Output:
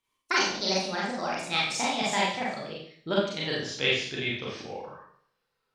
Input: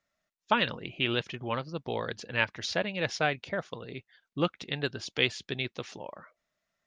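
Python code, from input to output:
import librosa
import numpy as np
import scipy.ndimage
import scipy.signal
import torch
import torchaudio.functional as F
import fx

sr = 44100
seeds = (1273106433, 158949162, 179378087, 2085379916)

y = fx.speed_glide(x, sr, from_pct=169, to_pct=70)
y = fx.rev_schroeder(y, sr, rt60_s=0.59, comb_ms=29, drr_db=-6.0)
y = y * librosa.db_to_amplitude(-3.5)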